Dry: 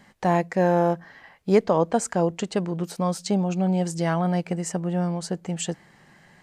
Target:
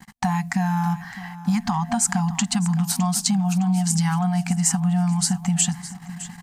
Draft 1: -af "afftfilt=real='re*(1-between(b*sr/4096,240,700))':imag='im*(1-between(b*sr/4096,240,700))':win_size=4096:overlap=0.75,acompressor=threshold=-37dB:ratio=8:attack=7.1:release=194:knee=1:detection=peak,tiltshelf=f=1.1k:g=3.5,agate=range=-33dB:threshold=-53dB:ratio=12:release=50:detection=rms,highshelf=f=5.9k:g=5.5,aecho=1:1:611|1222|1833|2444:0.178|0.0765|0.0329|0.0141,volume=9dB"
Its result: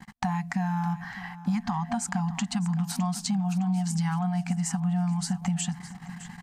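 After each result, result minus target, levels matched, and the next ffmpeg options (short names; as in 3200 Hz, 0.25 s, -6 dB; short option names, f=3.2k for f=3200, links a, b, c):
compressor: peak gain reduction +5.5 dB; 8000 Hz band -5.5 dB
-af "afftfilt=real='re*(1-between(b*sr/4096,240,700))':imag='im*(1-between(b*sr/4096,240,700))':win_size=4096:overlap=0.75,acompressor=threshold=-30.5dB:ratio=8:attack=7.1:release=194:knee=1:detection=peak,tiltshelf=f=1.1k:g=3.5,agate=range=-33dB:threshold=-53dB:ratio=12:release=50:detection=rms,highshelf=f=5.9k:g=5.5,aecho=1:1:611|1222|1833|2444:0.178|0.0765|0.0329|0.0141,volume=9dB"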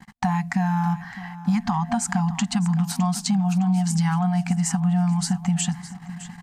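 8000 Hz band -6.0 dB
-af "afftfilt=real='re*(1-between(b*sr/4096,240,700))':imag='im*(1-between(b*sr/4096,240,700))':win_size=4096:overlap=0.75,acompressor=threshold=-30.5dB:ratio=8:attack=7.1:release=194:knee=1:detection=peak,tiltshelf=f=1.1k:g=3.5,agate=range=-33dB:threshold=-53dB:ratio=12:release=50:detection=rms,highshelf=f=5.9k:g=17,aecho=1:1:611|1222|1833|2444:0.178|0.0765|0.0329|0.0141,volume=9dB"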